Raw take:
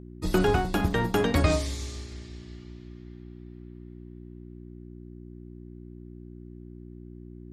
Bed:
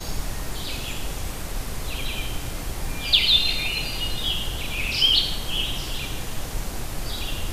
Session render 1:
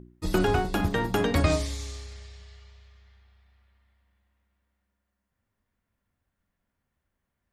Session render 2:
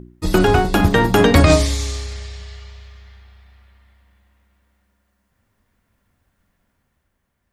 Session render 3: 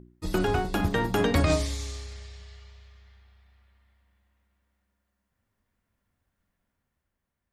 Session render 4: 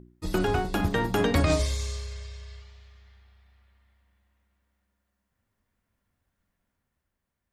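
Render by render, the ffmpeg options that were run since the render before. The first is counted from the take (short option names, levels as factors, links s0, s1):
-af "bandreject=f=60:t=h:w=4,bandreject=f=120:t=h:w=4,bandreject=f=180:t=h:w=4,bandreject=f=240:t=h:w=4,bandreject=f=300:t=h:w=4,bandreject=f=360:t=h:w=4,bandreject=f=420:t=h:w=4"
-af "dynaudnorm=f=120:g=13:m=1.68,alimiter=level_in=2.82:limit=0.891:release=50:level=0:latency=1"
-af "volume=0.266"
-filter_complex "[0:a]asettb=1/sr,asplit=3[s0][s1][s2];[s0]atrim=end=1.594[s3];[s1]atrim=start=1.59:end=2.62,asetpts=PTS-STARTPTS,afade=t=in:d=0.004:c=qsin,afade=t=out:st=1.026:d=0.004:c=qsin,aecho=1:1:1.9:0.65,atrim=end_sample=45423[s4];[s2]atrim=start=2.616[s5];[s3][s4]acrossfade=d=0.004:c1=hsin:c2=qsin[s6];[s6][s5]acrossfade=d=0.004:c1=qsin:c2=hsin"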